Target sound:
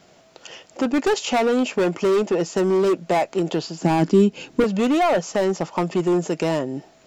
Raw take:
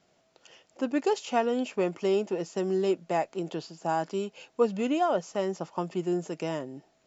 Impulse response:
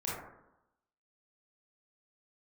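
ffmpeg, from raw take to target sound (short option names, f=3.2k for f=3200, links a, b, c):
-filter_complex "[0:a]volume=26dB,asoftclip=hard,volume=-26dB,asettb=1/sr,asplit=3[a][b][c];[a]atrim=end=3.824[d];[b]atrim=start=3.82:end=4.64,asetpts=PTS-STARTPTS,afade=t=in:d=0.004:c=qsin,afade=t=out:st=0.816:d=0.004:c=qsin,lowshelf=f=410:t=q:w=1.5:g=10[e];[c]atrim=start=4.636[f];[d][e]acrossfade=d=0.004:c1=hsin:c2=qsin[g];[g][f]acrossfade=d=0.004:c1=qsin:c2=hsin,asplit=2[h][i];[i]acompressor=threshold=-38dB:ratio=6,volume=1dB[j];[h][j]amix=inputs=2:normalize=0,volume=8dB"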